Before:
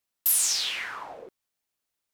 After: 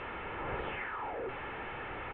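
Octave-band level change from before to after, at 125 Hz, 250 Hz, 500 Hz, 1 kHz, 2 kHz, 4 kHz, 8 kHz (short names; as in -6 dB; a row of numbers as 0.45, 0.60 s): n/a, +11.5 dB, +7.5 dB, +4.0 dB, -2.5 dB, -21.0 dB, under -40 dB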